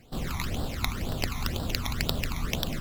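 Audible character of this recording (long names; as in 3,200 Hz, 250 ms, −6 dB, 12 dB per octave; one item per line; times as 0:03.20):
aliases and images of a low sample rate 9,000 Hz, jitter 0%
phaser sweep stages 12, 2 Hz, lowest notch 490–2,200 Hz
MP3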